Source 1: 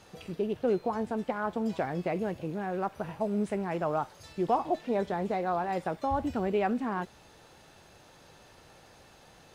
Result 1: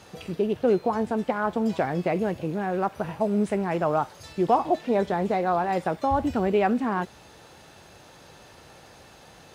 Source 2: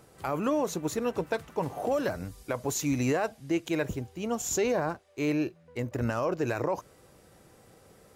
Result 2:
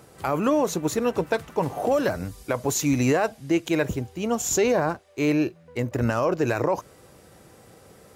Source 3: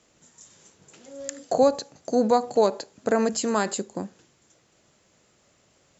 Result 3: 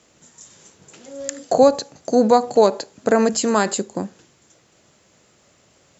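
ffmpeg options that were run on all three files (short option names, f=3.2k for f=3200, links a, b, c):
-af "highpass=41,volume=6dB"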